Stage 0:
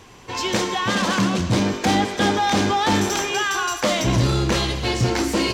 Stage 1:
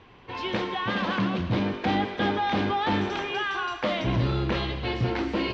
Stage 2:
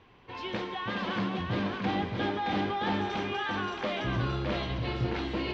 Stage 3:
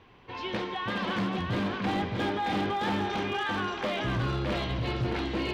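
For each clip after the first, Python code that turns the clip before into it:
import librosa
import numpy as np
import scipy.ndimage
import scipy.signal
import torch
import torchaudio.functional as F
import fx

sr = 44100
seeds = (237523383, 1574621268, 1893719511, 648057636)

y1 = scipy.signal.sosfilt(scipy.signal.butter(4, 3600.0, 'lowpass', fs=sr, output='sos'), x)
y1 = F.gain(torch.from_numpy(y1), -6.0).numpy()
y2 = y1 + 10.0 ** (-4.0 / 20.0) * np.pad(y1, (int(620 * sr / 1000.0), 0))[:len(y1)]
y2 = F.gain(torch.from_numpy(y2), -6.0).numpy()
y3 = np.clip(y2, -10.0 ** (-26.0 / 20.0), 10.0 ** (-26.0 / 20.0))
y3 = F.gain(torch.from_numpy(y3), 2.0).numpy()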